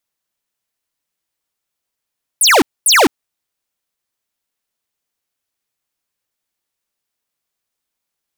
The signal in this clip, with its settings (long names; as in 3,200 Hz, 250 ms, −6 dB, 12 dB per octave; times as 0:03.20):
repeated falling chirps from 12,000 Hz, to 240 Hz, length 0.21 s square, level −9 dB, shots 2, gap 0.24 s